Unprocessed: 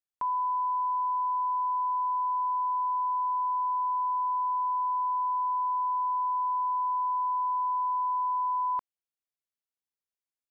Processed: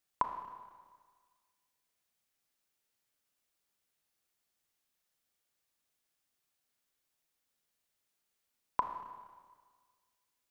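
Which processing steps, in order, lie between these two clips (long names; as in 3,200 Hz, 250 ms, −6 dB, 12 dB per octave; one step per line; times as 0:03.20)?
notch filter 1,000 Hz, Q 24
four-comb reverb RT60 1.6 s, combs from 26 ms, DRR 5.5 dB
level +10 dB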